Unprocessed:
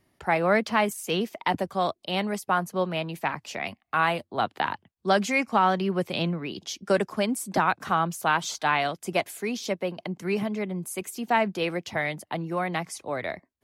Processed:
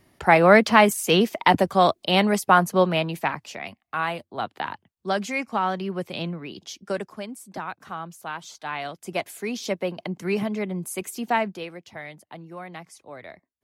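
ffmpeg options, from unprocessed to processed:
-af "volume=20dB,afade=t=out:st=2.73:d=0.86:silence=0.281838,afade=t=out:st=6.68:d=0.61:silence=0.446684,afade=t=in:st=8.59:d=1.19:silence=0.251189,afade=t=out:st=11.24:d=0.45:silence=0.251189"

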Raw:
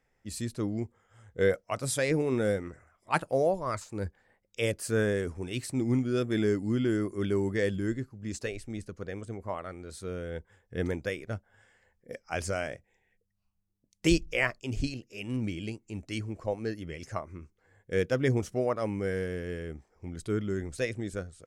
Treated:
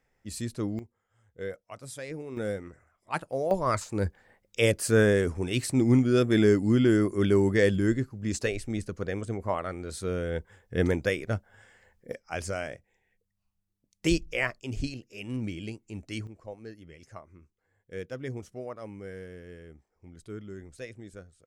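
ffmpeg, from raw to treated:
-af "asetnsamples=n=441:p=0,asendcmd='0.79 volume volume -11dB;2.37 volume volume -4dB;3.51 volume volume 6dB;12.12 volume volume -1dB;16.27 volume volume -10dB',volume=0.5dB"

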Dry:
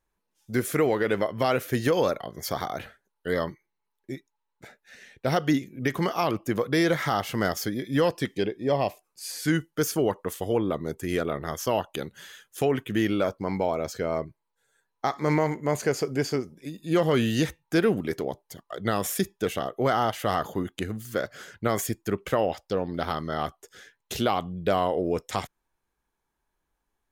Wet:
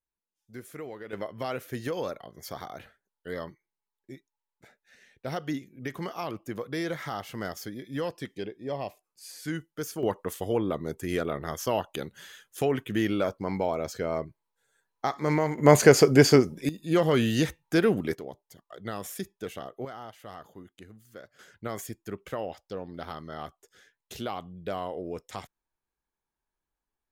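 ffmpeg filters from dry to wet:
-af "asetnsamples=n=441:p=0,asendcmd='1.13 volume volume -9dB;10.03 volume volume -2dB;15.58 volume volume 9.5dB;16.69 volume volume -0.5dB;18.15 volume volume -9.5dB;19.85 volume volume -18dB;21.39 volume volume -9.5dB',volume=-17dB"

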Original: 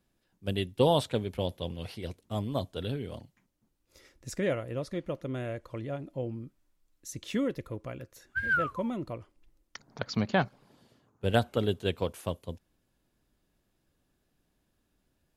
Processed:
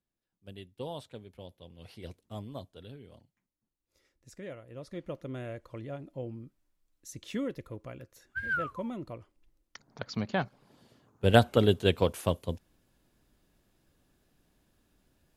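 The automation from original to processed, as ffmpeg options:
-af "volume=13dB,afade=t=in:st=1.72:d=0.34:silence=0.316228,afade=t=out:st=2.06:d=0.73:silence=0.398107,afade=t=in:st=4.67:d=0.4:silence=0.334965,afade=t=in:st=10.45:d=0.91:silence=0.354813"

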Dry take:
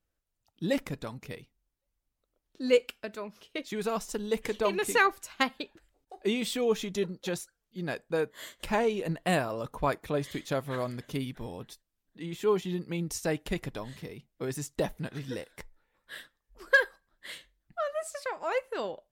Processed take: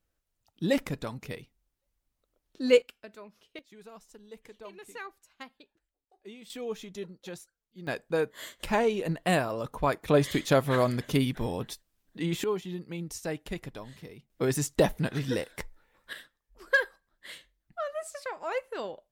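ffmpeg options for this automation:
-af "asetnsamples=n=441:p=0,asendcmd='2.82 volume volume -8.5dB;3.59 volume volume -18dB;6.5 volume volume -8.5dB;7.87 volume volume 1.5dB;10.08 volume volume 8dB;12.44 volume volume -4dB;14.3 volume volume 7dB;16.13 volume volume -2dB',volume=2.5dB"

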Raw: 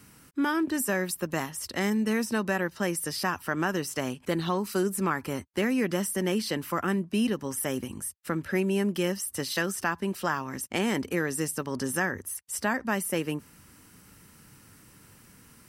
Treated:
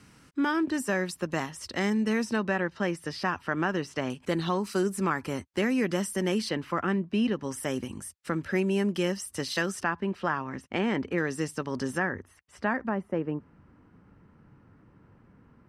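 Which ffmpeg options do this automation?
-af "asetnsamples=n=441:p=0,asendcmd='2.36 lowpass f 3900;4.1 lowpass f 8200;6.49 lowpass f 3700;7.43 lowpass f 7400;9.83 lowpass f 2800;11.18 lowpass f 5300;11.98 lowpass f 2300;12.89 lowpass f 1100',lowpass=6.4k"

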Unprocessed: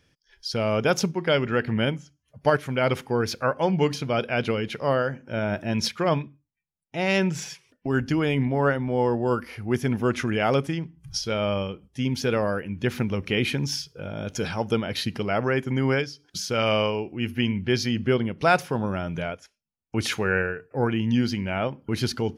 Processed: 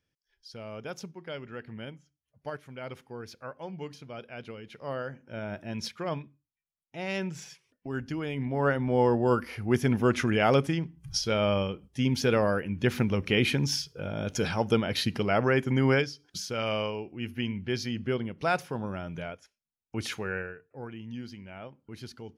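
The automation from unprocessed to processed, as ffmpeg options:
-af "volume=-0.5dB,afade=t=in:st=4.64:d=0.45:silence=0.446684,afade=t=in:st=8.36:d=0.57:silence=0.334965,afade=t=out:st=16.01:d=0.53:silence=0.446684,afade=t=out:st=20.04:d=0.78:silence=0.334965"

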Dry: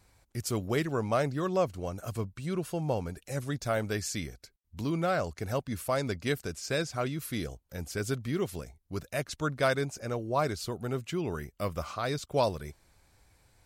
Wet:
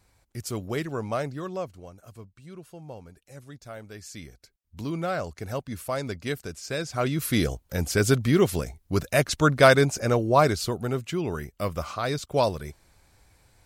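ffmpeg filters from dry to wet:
-af "volume=21.5dB,afade=t=out:st=1.11:d=0.86:silence=0.298538,afade=t=in:st=3.93:d=0.87:silence=0.281838,afade=t=in:st=6.81:d=0.58:silence=0.281838,afade=t=out:st=10.11:d=0.91:silence=0.446684"

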